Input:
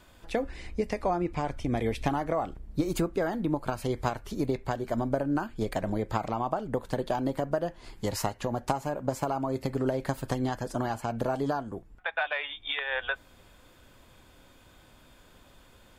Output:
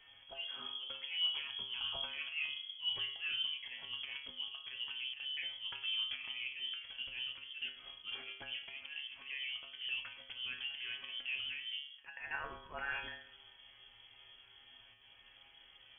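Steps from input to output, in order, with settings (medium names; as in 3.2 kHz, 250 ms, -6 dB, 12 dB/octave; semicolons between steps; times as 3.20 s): in parallel at -2.5 dB: compressor with a negative ratio -30 dBFS, ratio -0.5; on the sum: slow attack 131 ms; peak limiter -19.5 dBFS, peak gain reduction 7.5 dB; feedback comb 71 Hz, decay 0.51 s, harmonics odd, mix 90%; on a send: thinning echo 107 ms, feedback 57%, high-pass 760 Hz, level -17 dB; on the sum: frequency inversion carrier 3.3 kHz; trim +1.5 dB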